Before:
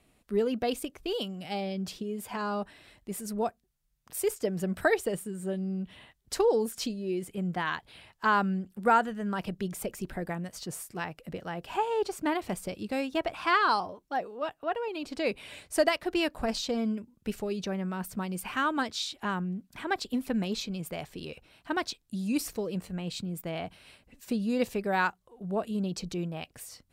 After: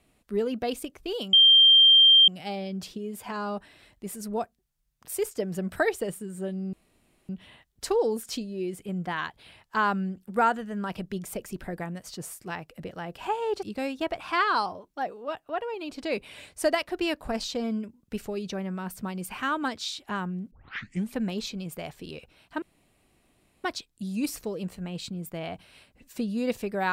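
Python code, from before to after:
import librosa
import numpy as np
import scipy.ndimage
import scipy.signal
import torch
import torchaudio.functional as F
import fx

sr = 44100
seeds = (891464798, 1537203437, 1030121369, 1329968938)

y = fx.edit(x, sr, fx.insert_tone(at_s=1.33, length_s=0.95, hz=3170.0, db=-12.5),
    fx.insert_room_tone(at_s=5.78, length_s=0.56),
    fx.cut(start_s=12.12, length_s=0.65),
    fx.tape_start(start_s=19.65, length_s=0.64),
    fx.insert_room_tone(at_s=21.76, length_s=1.02), tone=tone)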